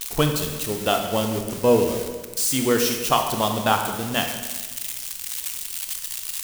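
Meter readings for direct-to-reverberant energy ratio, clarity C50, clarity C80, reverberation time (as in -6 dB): 4.0 dB, 6.0 dB, 7.5 dB, 1.3 s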